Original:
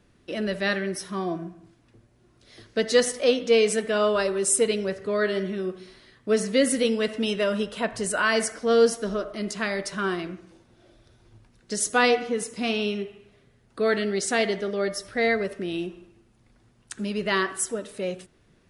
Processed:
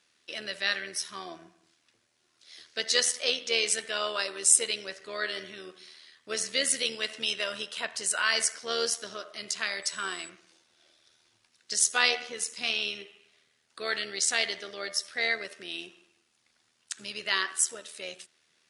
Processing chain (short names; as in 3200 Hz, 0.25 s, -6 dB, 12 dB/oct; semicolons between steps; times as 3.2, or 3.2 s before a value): 9.82–10.28 whine 7900 Hz -47 dBFS; band-pass 5400 Hz, Q 0.72; AM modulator 79 Hz, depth 35%; gain +7 dB